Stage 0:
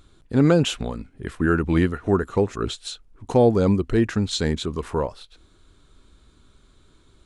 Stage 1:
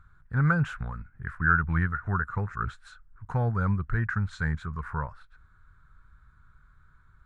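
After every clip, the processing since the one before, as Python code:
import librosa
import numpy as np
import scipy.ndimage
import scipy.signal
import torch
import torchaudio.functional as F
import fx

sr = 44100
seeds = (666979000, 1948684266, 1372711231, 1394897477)

y = fx.curve_eq(x, sr, hz=(150.0, 300.0, 620.0, 1500.0, 3000.0), db=(0, -22, -15, 8, -21))
y = y * 10.0 ** (-1.5 / 20.0)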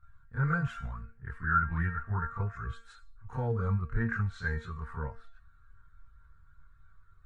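y = fx.comb_fb(x, sr, f0_hz=230.0, decay_s=0.42, harmonics='all', damping=0.0, mix_pct=80)
y = fx.chorus_voices(y, sr, voices=4, hz=0.3, base_ms=29, depth_ms=1.5, mix_pct=70)
y = y * 10.0 ** (8.0 / 20.0)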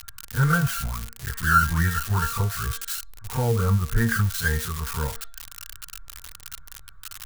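y = x + 0.5 * 10.0 ** (-28.5 / 20.0) * np.diff(np.sign(x), prepend=np.sign(x[:1]))
y = y * 10.0 ** (8.5 / 20.0)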